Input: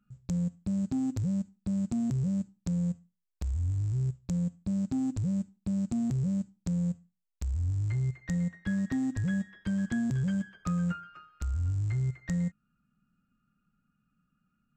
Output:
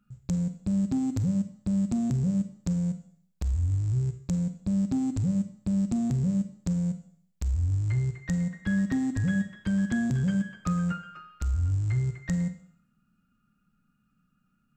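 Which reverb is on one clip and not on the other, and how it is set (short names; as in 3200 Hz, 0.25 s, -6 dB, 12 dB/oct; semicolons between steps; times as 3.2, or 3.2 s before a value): Schroeder reverb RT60 0.63 s, combs from 33 ms, DRR 10 dB; gain +3.5 dB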